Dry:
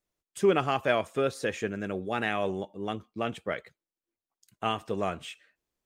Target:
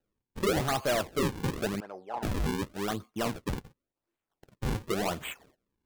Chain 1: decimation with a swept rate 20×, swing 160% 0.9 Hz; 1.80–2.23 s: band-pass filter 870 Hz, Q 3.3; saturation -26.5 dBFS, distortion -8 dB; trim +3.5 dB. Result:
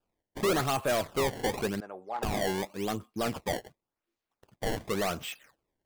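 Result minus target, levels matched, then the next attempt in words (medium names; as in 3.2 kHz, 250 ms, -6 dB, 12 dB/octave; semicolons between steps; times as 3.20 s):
decimation with a swept rate: distortion -9 dB
decimation with a swept rate 39×, swing 160% 0.9 Hz; 1.80–2.23 s: band-pass filter 870 Hz, Q 3.3; saturation -26.5 dBFS, distortion -8 dB; trim +3.5 dB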